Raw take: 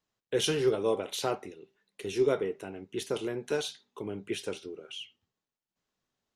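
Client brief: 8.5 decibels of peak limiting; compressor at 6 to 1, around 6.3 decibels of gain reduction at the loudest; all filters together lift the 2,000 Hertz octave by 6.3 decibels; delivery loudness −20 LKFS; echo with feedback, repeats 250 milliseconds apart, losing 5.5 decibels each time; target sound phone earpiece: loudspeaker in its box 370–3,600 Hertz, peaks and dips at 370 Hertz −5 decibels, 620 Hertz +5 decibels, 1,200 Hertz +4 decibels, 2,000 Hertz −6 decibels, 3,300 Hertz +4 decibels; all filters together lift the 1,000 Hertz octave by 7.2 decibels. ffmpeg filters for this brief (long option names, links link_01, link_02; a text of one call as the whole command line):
ffmpeg -i in.wav -af "equalizer=frequency=1000:width_type=o:gain=5,equalizer=frequency=2000:width_type=o:gain=8.5,acompressor=threshold=-27dB:ratio=6,alimiter=limit=-24dB:level=0:latency=1,highpass=370,equalizer=frequency=370:width_type=q:width=4:gain=-5,equalizer=frequency=620:width_type=q:width=4:gain=5,equalizer=frequency=1200:width_type=q:width=4:gain=4,equalizer=frequency=2000:width_type=q:width=4:gain=-6,equalizer=frequency=3300:width_type=q:width=4:gain=4,lowpass=frequency=3600:width=0.5412,lowpass=frequency=3600:width=1.3066,aecho=1:1:250|500|750|1000|1250|1500|1750:0.531|0.281|0.149|0.079|0.0419|0.0222|0.0118,volume=17dB" out.wav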